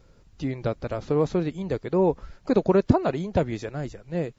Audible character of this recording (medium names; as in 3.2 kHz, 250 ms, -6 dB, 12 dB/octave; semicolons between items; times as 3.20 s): noise floor -56 dBFS; spectral tilt -6.5 dB/octave